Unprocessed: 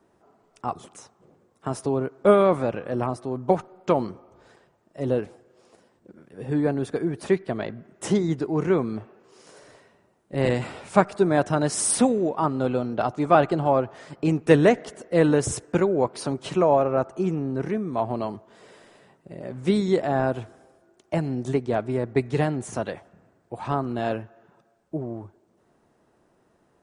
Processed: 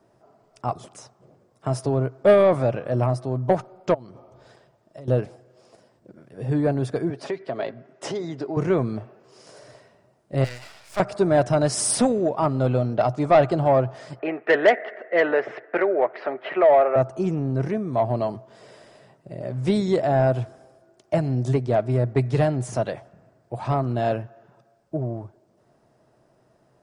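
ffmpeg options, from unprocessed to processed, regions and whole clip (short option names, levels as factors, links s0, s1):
-filter_complex "[0:a]asettb=1/sr,asplit=3[s0][s1][s2];[s0]atrim=end=3.944[s3];[s1]atrim=start=3.94:end=5.08,asetpts=PTS-STARTPTS,afade=t=in:d=0.004:c=qsin,afade=t=out:st=1.136:d=0.004:c=qsin,acompressor=threshold=0.01:ratio=8:attack=3.2:release=140:knee=1:detection=peak,equalizer=f=3500:t=o:w=0.32:g=3.5[s4];[s2]atrim=start=5.076[s5];[s3][s4]acrossfade=d=0.004:c1=hsin:c2=qsin[s6];[s6][s5]acrossfade=d=0.004:c1=qsin:c2=hsin,asettb=1/sr,asplit=3[s7][s8][s9];[s7]atrim=end=7.104[s10];[s8]atrim=start=7.1:end=8.57,asetpts=PTS-STARTPTS,afade=t=in:d=0.004:c=qsin,afade=t=out:st=1.466:d=0.004:c=qsin,aecho=1:1:7.3:0.4,atrim=end_sample=64827,acompressor=threshold=0.0708:ratio=5:attack=3.2:release=140:knee=1:detection=peak,highpass=270,lowpass=5800[s11];[s9]atrim=start=8.566[s12];[s10][s11]acrossfade=d=0.004:c1=hsin:c2=qsin[s13];[s13][s12]acrossfade=d=0.004:c1=qsin:c2=hsin,asettb=1/sr,asplit=3[s14][s15][s16];[s14]atrim=end=10.444[s17];[s15]atrim=start=10.44:end=11,asetpts=PTS-STARTPTS,afade=t=in:d=0.004:c=qsin,afade=t=out:st=0.556:d=0.004:c=qsin,highpass=1300,aeval=exprs='max(val(0),0)':c=same[s18];[s16]atrim=start=10.996[s19];[s17][s18]acrossfade=d=0.004:c1=hsin:c2=qsin[s20];[s20][s19]acrossfade=d=0.004:c1=qsin:c2=hsin,asettb=1/sr,asplit=3[s21][s22][s23];[s21]atrim=end=14.194[s24];[s22]atrim=start=14.19:end=16.96,asetpts=PTS-STARTPTS,afade=t=in:d=0.004:c=qsin,afade=t=out:st=2.766:d=0.004:c=qsin,asplit=2[s25][s26];[s26]highpass=f=720:p=1,volume=4.47,asoftclip=type=tanh:threshold=0.75[s27];[s25][s27]amix=inputs=2:normalize=0,lowpass=f=1900:p=1,volume=0.501,highpass=f=290:w=0.5412,highpass=f=290:w=1.3066,equalizer=f=290:t=q:w=4:g=-8,equalizer=f=510:t=q:w=4:g=-4,equalizer=f=980:t=q:w=4:g=-7,equalizer=f=1900:t=q:w=4:g=10,lowpass=f=2600:w=0.5412,lowpass=f=2600:w=1.3066[s28];[s23]atrim=start=16.956[s29];[s24][s28]acrossfade=d=0.004:c1=hsin:c2=qsin[s30];[s30][s29]acrossfade=d=0.004:c1=qsin:c2=hsin,equalizer=f=125:t=o:w=0.33:g=11,equalizer=f=630:t=o:w=0.33:g=8,equalizer=f=5000:t=o:w=0.33:g=6,acontrast=66,volume=0.473"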